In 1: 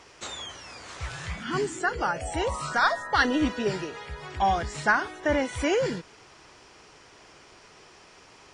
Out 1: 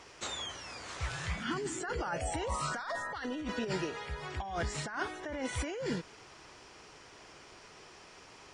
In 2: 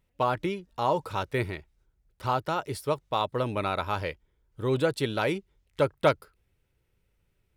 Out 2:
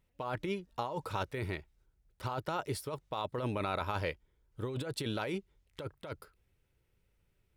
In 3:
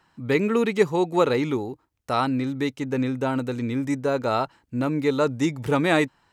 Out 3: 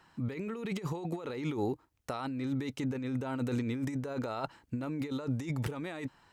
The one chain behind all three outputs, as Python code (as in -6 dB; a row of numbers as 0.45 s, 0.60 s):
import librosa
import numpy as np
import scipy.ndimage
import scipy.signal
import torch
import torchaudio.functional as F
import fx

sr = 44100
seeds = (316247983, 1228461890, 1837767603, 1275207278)

y = fx.over_compress(x, sr, threshold_db=-30.0, ratio=-1.0)
y = F.gain(torch.from_numpy(y), -5.5).numpy()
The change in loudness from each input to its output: -10.0 LU, -9.0 LU, -12.0 LU